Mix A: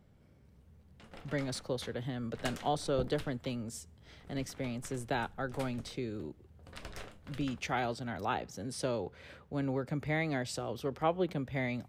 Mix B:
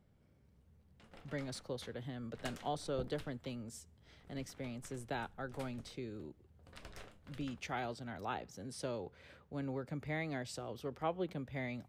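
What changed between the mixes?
speech -6.5 dB; background -6.5 dB

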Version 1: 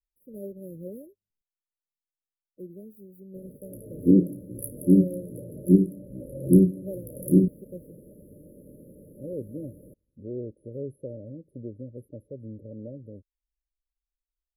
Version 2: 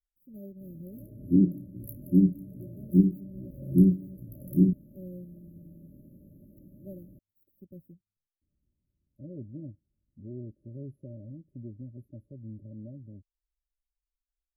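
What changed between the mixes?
background: entry -2.75 s; master: add fixed phaser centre 2400 Hz, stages 8

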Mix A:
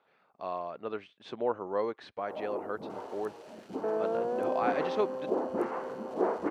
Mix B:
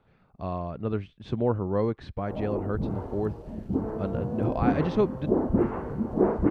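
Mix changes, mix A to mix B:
second sound -10.0 dB; master: remove HPF 520 Hz 12 dB/oct

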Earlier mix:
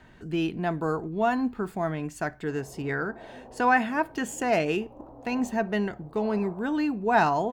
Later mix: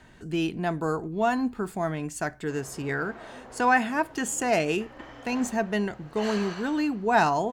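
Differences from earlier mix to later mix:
background: remove steep low-pass 950 Hz 36 dB/oct; master: add bell 8400 Hz +8.5 dB 1.5 oct

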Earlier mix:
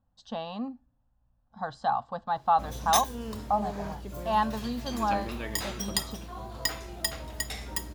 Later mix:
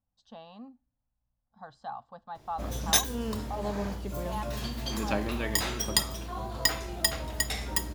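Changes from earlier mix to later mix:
speech -12.0 dB; background +4.0 dB

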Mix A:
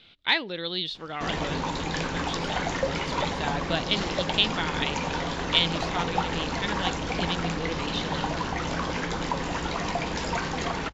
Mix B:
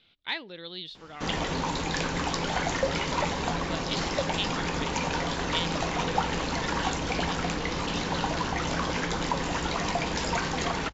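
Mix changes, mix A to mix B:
speech -9.0 dB; background: add high shelf 5600 Hz +5.5 dB

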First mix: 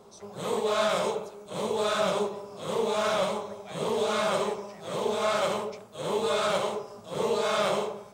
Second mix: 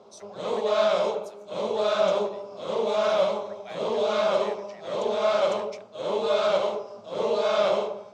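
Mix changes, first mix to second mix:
speech +3.5 dB; background: add speaker cabinet 120–5700 Hz, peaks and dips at 150 Hz -9 dB, 600 Hz +7 dB, 1800 Hz -5 dB

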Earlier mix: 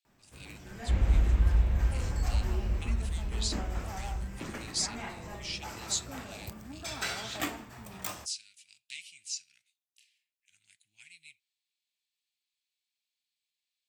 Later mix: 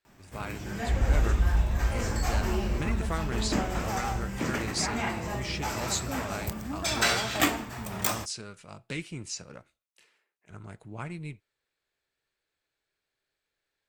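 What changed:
speech: remove inverse Chebyshev high-pass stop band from 1300 Hz, stop band 40 dB; first sound +9.5 dB

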